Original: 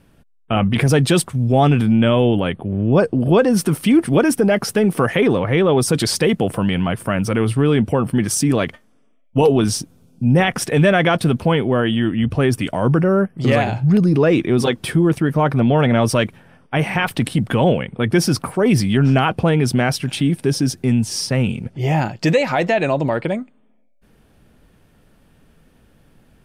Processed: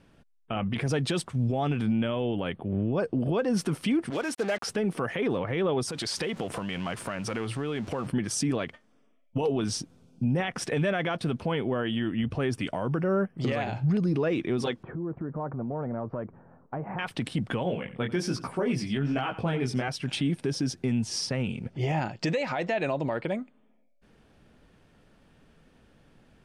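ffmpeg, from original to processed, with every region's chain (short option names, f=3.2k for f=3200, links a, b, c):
-filter_complex "[0:a]asettb=1/sr,asplit=3[a][b][c];[a]atrim=end=4.104[d];[b]atrim=start=4.1:end=4.67,asetpts=PTS-STARTPTS,afade=t=in:d=0.004:c=qsin,afade=t=out:st=0.566:d=0.004:c=qsin,highpass=f=650:p=1,aeval=exprs='sgn(val(0))*max(abs(val(0))-0.00299,0)':c=same,acrusher=bits=4:mix=0:aa=0.5[e];[c]atrim=start=4.666[f];[d][e]acrossfade=d=0.004:c1=hsin:c2=qsin[g];[g][f]acrossfade=d=0.004:c1=qsin:c2=hsin,asettb=1/sr,asplit=3[h][i][j];[h]atrim=end=5.894[k];[i]atrim=start=5.89:end=8.07,asetpts=PTS-STARTPTS,afade=t=in:d=0.004:c=qsin,afade=t=out:st=2.176:d=0.004:c=qsin,aeval=exprs='val(0)+0.5*0.0266*sgn(val(0))':c=same,lowshelf=f=440:g=-6,acompressor=threshold=-22dB:ratio=10:attack=3.2:release=140:knee=1:detection=peak[l];[j]atrim=start=8.066[m];[k][l]acrossfade=d=0.004:c1=hsin:c2=qsin[n];[n][m]acrossfade=d=0.004:c1=qsin:c2=hsin,asettb=1/sr,asplit=3[o][p][q];[o]atrim=end=14.834[r];[p]atrim=start=14.83:end=16.99,asetpts=PTS-STARTPTS,afade=t=in:d=0.004:c=qsin,afade=t=out:st=2.156:d=0.004:c=qsin,lowpass=f=1.2k:w=0.5412,lowpass=f=1.2k:w=1.3066,acompressor=threshold=-27dB:ratio=4:attack=3.2:release=140:knee=1:detection=peak[s];[q]atrim=start=16.986[t];[r][s]acrossfade=d=0.004:c1=hsin:c2=qsin[u];[u][t]acrossfade=d=0.004:c1=qsin:c2=hsin,asettb=1/sr,asplit=3[v][w][x];[v]atrim=end=17.634[y];[w]atrim=start=17.63:end=19.88,asetpts=PTS-STARTPTS,afade=t=in:d=0.004:c=qsin,afade=t=out:st=2.246:d=0.004:c=qsin,flanger=delay=16:depth=7.8:speed=1.2,aecho=1:1:88:0.15,atrim=end_sample=99225[z];[x]atrim=start=19.876[aa];[y][z]acrossfade=d=0.004:c1=hsin:c2=qsin[ab];[ab][aa]acrossfade=d=0.004:c1=qsin:c2=hsin,lowpass=7.1k,lowshelf=f=160:g=-5,alimiter=limit=-15.5dB:level=0:latency=1:release=328,volume=-3.5dB"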